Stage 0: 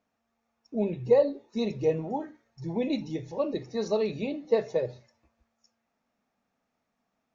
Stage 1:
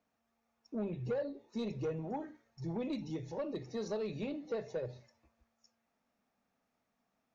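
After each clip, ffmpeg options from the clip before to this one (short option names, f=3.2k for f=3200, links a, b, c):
-filter_complex "[0:a]acrossover=split=140[a][b];[b]acompressor=threshold=-35dB:ratio=2[c];[a][c]amix=inputs=2:normalize=0,asoftclip=type=tanh:threshold=-27dB,volume=-2.5dB"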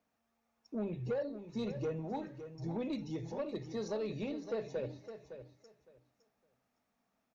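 -af "aecho=1:1:561|1122|1683:0.282|0.0535|0.0102"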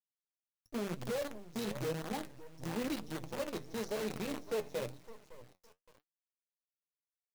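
-af "acrusher=bits=7:dc=4:mix=0:aa=0.000001,flanger=delay=3.7:depth=8.8:regen=59:speed=0.97:shape=triangular,volume=3dB"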